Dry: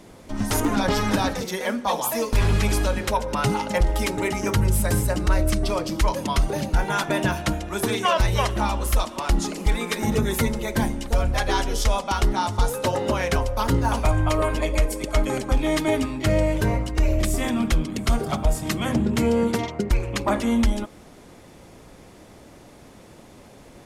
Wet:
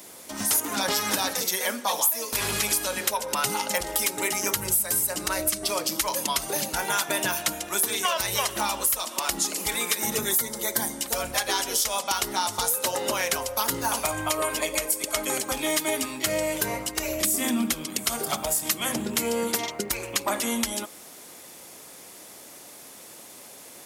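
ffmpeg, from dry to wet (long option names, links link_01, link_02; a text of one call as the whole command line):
ffmpeg -i in.wav -filter_complex "[0:a]asettb=1/sr,asplit=3[link_01][link_02][link_03];[link_01]atrim=end=10.314[link_04];[link_02]atrim=start=10.31:end=11.01,asetpts=PTS-STARTPTS,afade=type=in:duration=0.004:curve=qsin,afade=type=out:start_time=0.696:duration=0.004:curve=qsin,equalizer=frequency=2600:width=5.1:gain=-12.5[link_05];[link_03]atrim=start=11.006[link_06];[link_04][link_05]acrossfade=duration=0.004:curve1=hsin:curve2=qsin[link_07];[link_07][link_06]acrossfade=duration=0.004:curve1=qsin:curve2=hsin,asettb=1/sr,asplit=3[link_08][link_09][link_10];[link_08]atrim=end=17.244[link_11];[link_09]atrim=start=17.24:end=17.74,asetpts=PTS-STARTPTS,afade=type=in:duration=0.004:curve=qsin,afade=type=out:start_time=0.496:duration=0.004:curve=qsin,equalizer=frequency=240:width=1.5:gain=11[link_12];[link_10]atrim=start=17.736[link_13];[link_11][link_12]acrossfade=duration=0.004:curve1=hsin:curve2=qsin[link_14];[link_14][link_13]acrossfade=duration=0.004:curve1=qsin:curve2=hsin,highpass=frequency=99:poles=1,aemphasis=mode=production:type=riaa,acompressor=threshold=-22dB:ratio=4" out.wav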